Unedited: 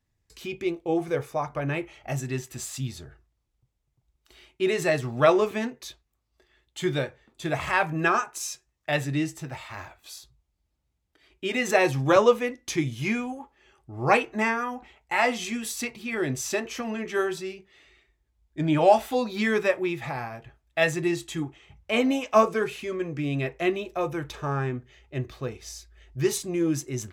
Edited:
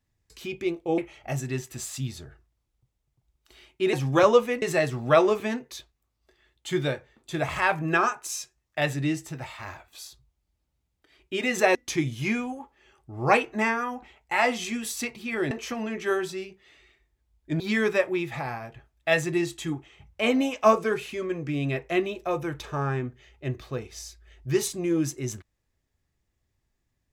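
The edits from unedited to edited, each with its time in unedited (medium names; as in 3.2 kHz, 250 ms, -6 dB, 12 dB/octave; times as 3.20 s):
0.98–1.78 s: delete
11.86–12.55 s: move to 4.73 s
16.31–16.59 s: delete
18.68–19.30 s: delete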